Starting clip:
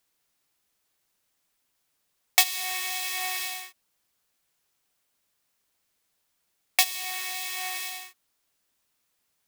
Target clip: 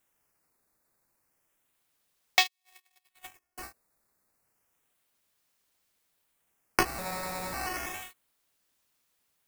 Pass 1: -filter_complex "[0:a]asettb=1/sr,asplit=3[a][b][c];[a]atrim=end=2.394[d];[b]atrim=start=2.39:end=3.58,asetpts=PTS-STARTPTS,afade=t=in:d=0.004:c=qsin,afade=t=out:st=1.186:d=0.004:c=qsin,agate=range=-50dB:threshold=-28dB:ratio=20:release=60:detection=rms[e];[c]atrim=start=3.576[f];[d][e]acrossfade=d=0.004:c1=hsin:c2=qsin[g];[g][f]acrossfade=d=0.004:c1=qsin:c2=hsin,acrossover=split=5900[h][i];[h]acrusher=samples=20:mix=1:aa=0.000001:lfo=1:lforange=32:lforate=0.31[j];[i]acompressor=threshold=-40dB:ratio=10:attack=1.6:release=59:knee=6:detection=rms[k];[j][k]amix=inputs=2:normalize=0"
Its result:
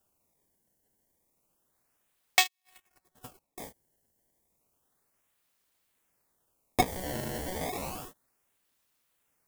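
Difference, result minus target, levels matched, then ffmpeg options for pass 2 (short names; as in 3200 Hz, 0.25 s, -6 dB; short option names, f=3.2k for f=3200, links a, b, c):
decimation with a swept rate: distortion +4 dB
-filter_complex "[0:a]asettb=1/sr,asplit=3[a][b][c];[a]atrim=end=2.394[d];[b]atrim=start=2.39:end=3.58,asetpts=PTS-STARTPTS,afade=t=in:d=0.004:c=qsin,afade=t=out:st=1.186:d=0.004:c=qsin,agate=range=-50dB:threshold=-28dB:ratio=20:release=60:detection=rms[e];[c]atrim=start=3.576[f];[d][e]acrossfade=d=0.004:c1=hsin:c2=qsin[g];[g][f]acrossfade=d=0.004:c1=qsin:c2=hsin,acrossover=split=5900[h][i];[h]acrusher=samples=8:mix=1:aa=0.000001:lfo=1:lforange=12.8:lforate=0.31[j];[i]acompressor=threshold=-40dB:ratio=10:attack=1.6:release=59:knee=6:detection=rms[k];[j][k]amix=inputs=2:normalize=0"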